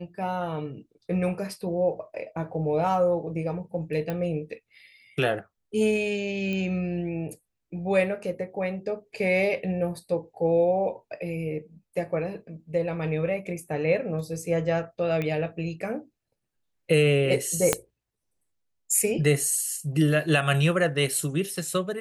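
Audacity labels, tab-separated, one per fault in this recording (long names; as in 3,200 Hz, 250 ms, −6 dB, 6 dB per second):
4.100000	4.100000	click −18 dBFS
6.530000	6.530000	click −20 dBFS
15.220000	15.220000	click −18 dBFS
17.730000	17.730000	click −5 dBFS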